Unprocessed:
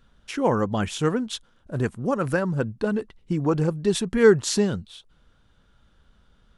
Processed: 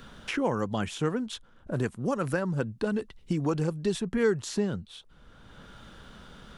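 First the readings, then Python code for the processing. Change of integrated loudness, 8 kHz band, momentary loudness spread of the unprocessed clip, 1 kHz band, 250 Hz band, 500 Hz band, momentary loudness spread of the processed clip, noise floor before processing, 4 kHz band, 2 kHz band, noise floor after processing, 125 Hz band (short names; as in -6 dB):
-6.0 dB, -9.0 dB, 13 LU, -5.5 dB, -5.0 dB, -7.0 dB, 23 LU, -61 dBFS, -6.5 dB, -5.5 dB, -56 dBFS, -5.0 dB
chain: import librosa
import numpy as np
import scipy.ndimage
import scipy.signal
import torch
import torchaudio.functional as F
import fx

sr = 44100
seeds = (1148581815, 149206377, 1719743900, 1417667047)

y = fx.band_squash(x, sr, depth_pct=70)
y = F.gain(torch.from_numpy(y), -5.5).numpy()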